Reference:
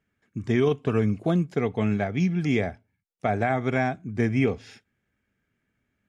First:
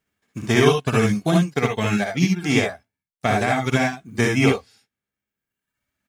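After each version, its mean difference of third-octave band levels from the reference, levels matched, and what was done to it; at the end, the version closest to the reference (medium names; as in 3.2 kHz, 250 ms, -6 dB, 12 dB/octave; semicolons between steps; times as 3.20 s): 8.5 dB: formants flattened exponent 0.6; reverb removal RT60 1.4 s; on a send: early reflections 58 ms -4 dB, 73 ms -4.5 dB; on the sum: upward expansion 1.5:1, over -35 dBFS; trim +6.5 dB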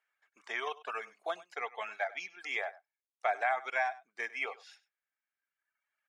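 12.0 dB: high-pass 750 Hz 24 dB/octave; reverb removal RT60 1.5 s; treble shelf 4.4 kHz -8.5 dB; on a send: delay 99 ms -19 dB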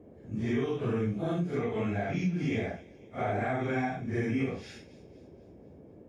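5.5 dB: phase randomisation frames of 200 ms; compression 3:1, threshold -29 dBFS, peak gain reduction 9.5 dB; feedback echo behind a high-pass 247 ms, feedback 50%, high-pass 2.9 kHz, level -16 dB; band noise 53–510 Hz -52 dBFS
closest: third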